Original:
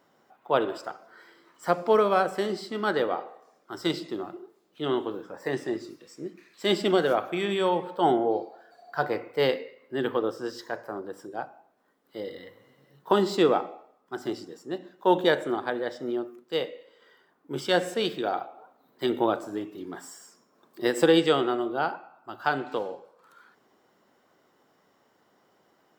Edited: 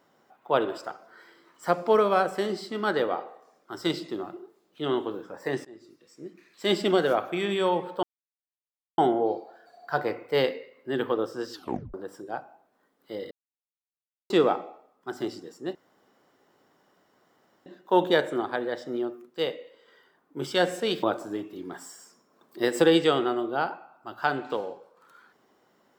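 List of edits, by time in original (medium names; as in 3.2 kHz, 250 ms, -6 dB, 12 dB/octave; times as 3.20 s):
5.65–6.73 s: fade in, from -22.5 dB
8.03 s: insert silence 0.95 s
10.57 s: tape stop 0.42 s
12.36–13.35 s: mute
14.80 s: insert room tone 1.91 s
18.17–19.25 s: delete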